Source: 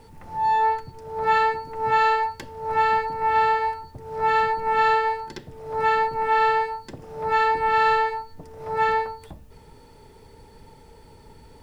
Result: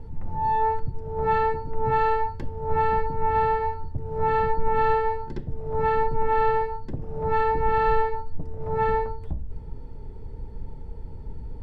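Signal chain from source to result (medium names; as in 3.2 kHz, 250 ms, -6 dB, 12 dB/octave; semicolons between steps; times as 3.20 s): tilt EQ -4.5 dB/octave; trim -4 dB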